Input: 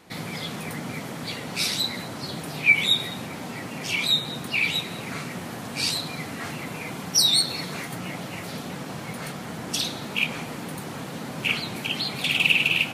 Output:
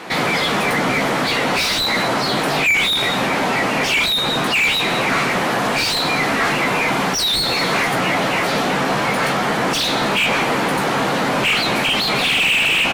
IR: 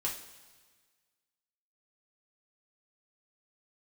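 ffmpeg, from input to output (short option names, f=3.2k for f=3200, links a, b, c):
-filter_complex "[0:a]asplit=2[a][b];[b]adelay=15,volume=-8dB[c];[a][c]amix=inputs=2:normalize=0,asplit=2[d][e];[e]highpass=f=720:p=1,volume=31dB,asoftclip=type=tanh:threshold=-5.5dB[f];[d][f]amix=inputs=2:normalize=0,lowpass=f=1.9k:p=1,volume=-6dB"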